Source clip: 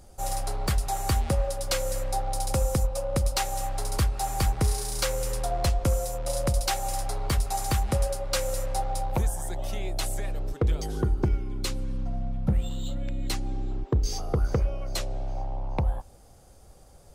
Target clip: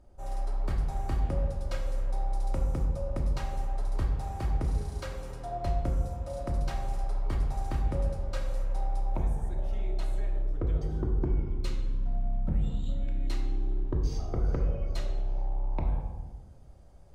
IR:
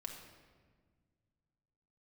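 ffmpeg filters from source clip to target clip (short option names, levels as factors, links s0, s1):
-filter_complex "[0:a]asetnsamples=n=441:p=0,asendcmd='11.37 lowpass f 2600',lowpass=f=1200:p=1[s0];[1:a]atrim=start_sample=2205,asetrate=61740,aresample=44100[s1];[s0][s1]afir=irnorm=-1:irlink=0"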